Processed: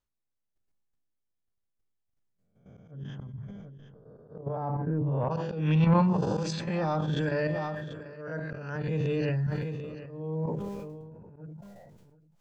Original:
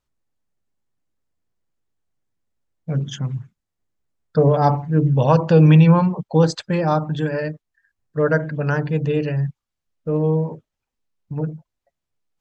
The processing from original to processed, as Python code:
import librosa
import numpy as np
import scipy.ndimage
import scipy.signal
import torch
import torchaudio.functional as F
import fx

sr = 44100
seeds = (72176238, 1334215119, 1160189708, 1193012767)

y = fx.spec_swells(x, sr, rise_s=0.55)
y = fx.lowpass(y, sr, hz=1300.0, slope=12, at=(2.9, 5.3), fade=0.02)
y = fx.level_steps(y, sr, step_db=12)
y = fx.auto_swell(y, sr, attack_ms=453.0)
y = fx.comb_fb(y, sr, f0_hz=200.0, decay_s=1.2, harmonics='all', damping=0.0, mix_pct=50)
y = 10.0 ** (-18.5 / 20.0) * np.tanh(y / 10.0 ** (-18.5 / 20.0))
y = y + 10.0 ** (-21.5 / 20.0) * np.pad(y, (int(741 * sr / 1000.0), 0))[:len(y)]
y = fx.sustainer(y, sr, db_per_s=26.0)
y = y * librosa.db_to_amplitude(2.5)